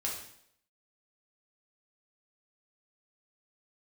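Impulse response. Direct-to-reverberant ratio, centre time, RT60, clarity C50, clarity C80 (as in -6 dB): -3.0 dB, 38 ms, 0.70 s, 4.0 dB, 7.5 dB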